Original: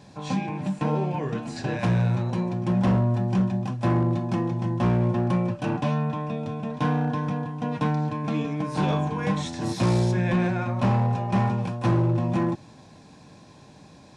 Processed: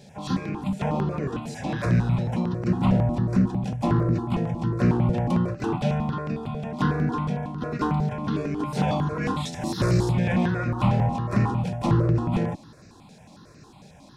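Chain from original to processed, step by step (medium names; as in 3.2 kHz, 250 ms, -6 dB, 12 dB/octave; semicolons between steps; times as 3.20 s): harmony voices -12 st -17 dB, +5 st -9 dB; stepped phaser 11 Hz 300–3300 Hz; trim +2.5 dB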